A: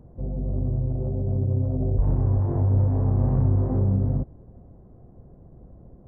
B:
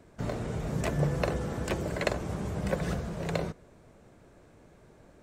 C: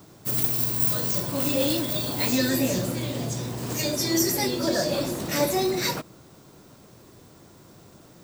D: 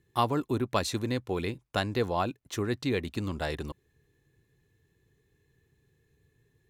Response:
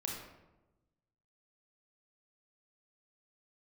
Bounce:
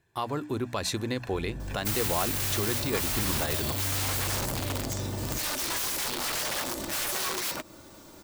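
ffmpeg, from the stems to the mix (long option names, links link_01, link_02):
-filter_complex "[0:a]asoftclip=type=tanh:threshold=-28.5dB,adelay=1150,volume=-3.5dB[link_01];[1:a]highpass=1400,highshelf=frequency=3400:gain=-7.5,aecho=1:1:1.2:0.99,volume=-9dB[link_02];[2:a]lowshelf=frequency=74:gain=11.5,aecho=1:1:3.4:0.51,aeval=exprs='(mod(10.6*val(0)+1,2)-1)/10.6':channel_layout=same,adelay=1600,volume=2.5dB[link_03];[3:a]bandreject=frequency=60:width_type=h:width=6,bandreject=frequency=120:width_type=h:width=6,bandreject=frequency=180:width_type=h:width=6,bandreject=frequency=240:width_type=h:width=6,bandreject=frequency=300:width_type=h:width=6,dynaudnorm=framelen=120:gausssize=11:maxgain=6.5dB,volume=-1dB[link_04];[link_02][link_03]amix=inputs=2:normalize=0,acrusher=bits=5:mode=log:mix=0:aa=0.000001,acompressor=threshold=-29dB:ratio=5,volume=0dB[link_05];[link_01][link_04]amix=inputs=2:normalize=0,lowshelf=frequency=180:gain=8.5,alimiter=limit=-17dB:level=0:latency=1:release=135,volume=0dB[link_06];[link_05][link_06]amix=inputs=2:normalize=0,lowshelf=frequency=300:gain=-8.5"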